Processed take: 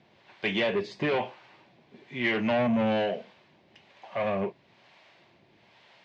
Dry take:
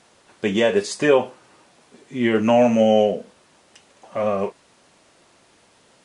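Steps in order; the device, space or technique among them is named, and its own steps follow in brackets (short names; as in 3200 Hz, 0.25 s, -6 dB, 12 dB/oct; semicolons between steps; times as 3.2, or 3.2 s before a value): guitar amplifier with harmonic tremolo (harmonic tremolo 1.1 Hz, depth 70%, crossover 530 Hz; soft clip -21.5 dBFS, distortion -9 dB; speaker cabinet 100–4100 Hz, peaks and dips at 120 Hz +5 dB, 270 Hz -6 dB, 480 Hz -7 dB, 1300 Hz -8 dB, 2200 Hz +4 dB); gain +2 dB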